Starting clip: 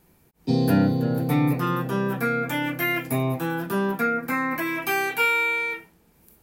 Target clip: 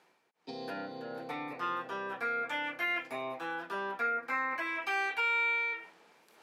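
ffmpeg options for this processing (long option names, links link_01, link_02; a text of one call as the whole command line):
ffmpeg -i in.wav -af "areverse,acompressor=mode=upward:threshold=-34dB:ratio=2.5,areverse,alimiter=limit=-15dB:level=0:latency=1:release=130,highpass=620,lowpass=4400,volume=-5.5dB" out.wav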